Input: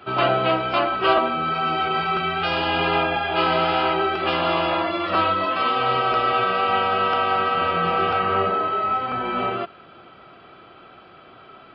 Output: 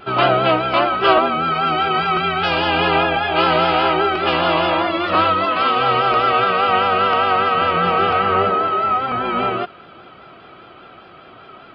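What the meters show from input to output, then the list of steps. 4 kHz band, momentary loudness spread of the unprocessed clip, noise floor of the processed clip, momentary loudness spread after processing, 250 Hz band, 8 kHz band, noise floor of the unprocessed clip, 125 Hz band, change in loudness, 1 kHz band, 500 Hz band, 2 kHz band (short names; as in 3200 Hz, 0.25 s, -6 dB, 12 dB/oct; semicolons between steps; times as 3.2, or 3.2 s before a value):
+4.5 dB, 3 LU, -43 dBFS, 3 LU, +4.5 dB, n/a, -47 dBFS, +4.5 dB, +4.5 dB, +4.5 dB, +4.5 dB, +4.5 dB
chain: vibrato 5 Hz 57 cents; gain +4.5 dB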